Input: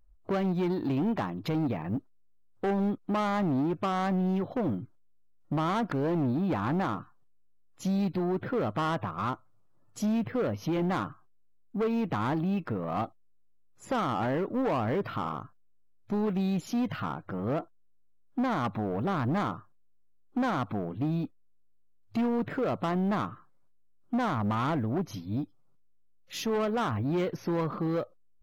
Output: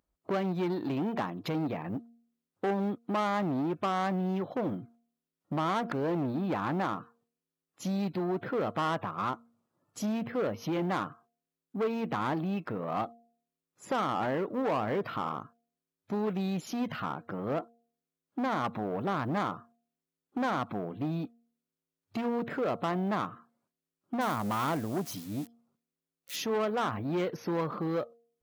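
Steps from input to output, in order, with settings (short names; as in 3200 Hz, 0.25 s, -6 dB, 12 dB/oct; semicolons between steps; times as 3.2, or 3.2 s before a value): 24.21–26.36 switching spikes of -34 dBFS; HPF 160 Hz 12 dB/oct; de-hum 233.6 Hz, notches 3; dynamic EQ 250 Hz, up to -3 dB, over -38 dBFS, Q 1.3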